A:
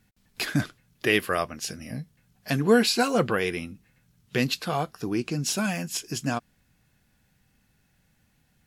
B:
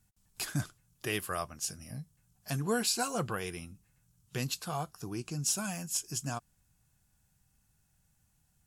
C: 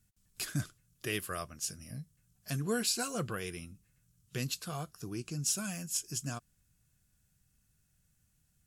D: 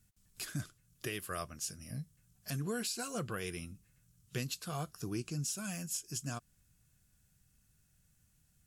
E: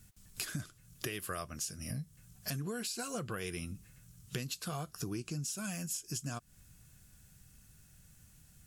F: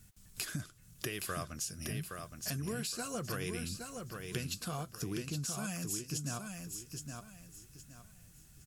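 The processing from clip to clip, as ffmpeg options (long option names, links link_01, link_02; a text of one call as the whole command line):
ffmpeg -i in.wav -af "equalizer=frequency=250:width_type=o:width=1:gain=-9,equalizer=frequency=500:width_type=o:width=1:gain=-8,equalizer=frequency=2000:width_type=o:width=1:gain=-10,equalizer=frequency=4000:width_type=o:width=1:gain=-6,equalizer=frequency=8000:width_type=o:width=1:gain=6,volume=-3dB" out.wav
ffmpeg -i in.wav -af "equalizer=frequency=860:width=2.5:gain=-10.5,volume=-1dB" out.wav
ffmpeg -i in.wav -af "alimiter=level_in=5dB:limit=-24dB:level=0:latency=1:release=366,volume=-5dB,volume=2dB" out.wav
ffmpeg -i in.wav -af "acompressor=threshold=-47dB:ratio=6,volume=10.5dB" out.wav
ffmpeg -i in.wav -af "aecho=1:1:818|1636|2454|3272:0.531|0.154|0.0446|0.0129" out.wav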